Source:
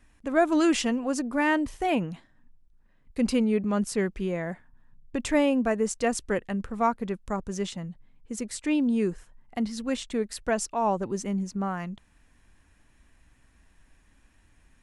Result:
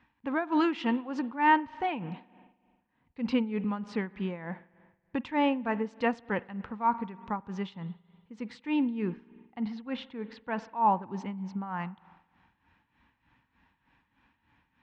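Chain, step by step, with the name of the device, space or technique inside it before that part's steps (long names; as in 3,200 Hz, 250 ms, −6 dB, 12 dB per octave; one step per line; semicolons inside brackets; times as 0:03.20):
0:09.02–0:11.11: high-frequency loss of the air 110 metres
combo amplifier with spring reverb and tremolo (spring reverb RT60 1.6 s, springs 47 ms, chirp 50 ms, DRR 17 dB; amplitude tremolo 3.3 Hz, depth 73%; loudspeaker in its box 110–3,700 Hz, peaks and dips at 390 Hz −7 dB, 630 Hz −9 dB, 900 Hz +10 dB)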